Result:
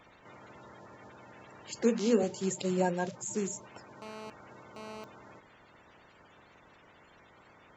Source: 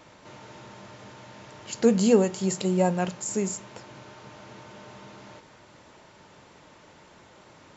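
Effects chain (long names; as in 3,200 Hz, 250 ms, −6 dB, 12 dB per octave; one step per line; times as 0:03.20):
spectral magnitudes quantised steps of 30 dB
0:01.83–0:02.23: elliptic band-pass filter 230–6,500 Hz
0:04.02–0:05.04: phone interference −39 dBFS
level −5.5 dB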